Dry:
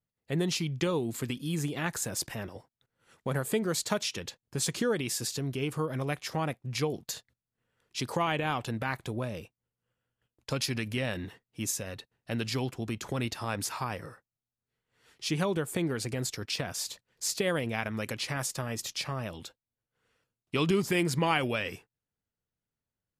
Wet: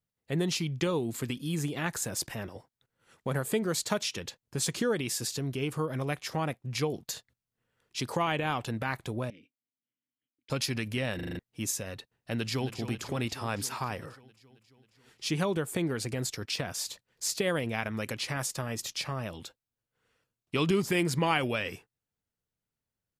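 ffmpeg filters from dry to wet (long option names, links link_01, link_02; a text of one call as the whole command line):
ffmpeg -i in.wav -filter_complex "[0:a]asettb=1/sr,asplit=3[link_01][link_02][link_03];[link_01]atrim=end=9.304[link_04];[link_02]atrim=start=9.3:end=10.5,asetpts=PTS-STARTPTS,afade=type=in:duration=0.004:curve=qsin,afade=type=out:start_time=1.196:duration=0.004:curve=qsin,asplit=3[link_05][link_06][link_07];[link_05]bandpass=frequency=270:width_type=q:width=8,volume=0dB[link_08];[link_06]bandpass=frequency=2290:width_type=q:width=8,volume=-6dB[link_09];[link_07]bandpass=frequency=3010:width_type=q:width=8,volume=-9dB[link_10];[link_08][link_09][link_10]amix=inputs=3:normalize=0[link_11];[link_03]atrim=start=10.496[link_12];[link_04][link_11]acrossfade=duration=0.004:curve1=hsin:curve2=qsin[link_13];[link_13][link_12]acrossfade=duration=0.004:curve1=qsin:curve2=hsin,asplit=2[link_14][link_15];[link_15]afade=type=in:start_time=12.34:duration=0.01,afade=type=out:start_time=12.78:duration=0.01,aecho=0:1:270|540|810|1080|1350|1620|1890|2160|2430|2700:0.316228|0.221359|0.154952|0.108466|0.0759263|0.0531484|0.0372039|0.0260427|0.0182299|0.0127609[link_16];[link_14][link_16]amix=inputs=2:normalize=0,asplit=7[link_17][link_18][link_19][link_20][link_21][link_22][link_23];[link_17]atrim=end=11.192[link_24];[link_18]atrim=start=11.148:end=11.192[link_25];[link_19]atrim=start=11.148:end=11.192[link_26];[link_20]atrim=start=11.148:end=11.192[link_27];[link_21]atrim=start=11.148:end=11.192[link_28];[link_22]atrim=start=11.148:end=11.192[link_29];[link_23]atrim=start=11.388[link_30];[link_24][link_25]acrossfade=duration=0.004:curve1=hsin:curve2=hsin[link_31];[link_31][link_26]acrossfade=duration=0.004:curve1=hsin:curve2=hsin[link_32];[link_32][link_27]acrossfade=duration=0.004:curve1=hsin:curve2=hsin[link_33];[link_33][link_28]acrossfade=duration=0.004:curve1=hsin:curve2=hsin[link_34];[link_34][link_29]acrossfade=duration=0.004:curve1=hsin:curve2=hsin[link_35];[link_35][link_30]acrossfade=duration=0.004:curve1=hsin:curve2=hsin" out.wav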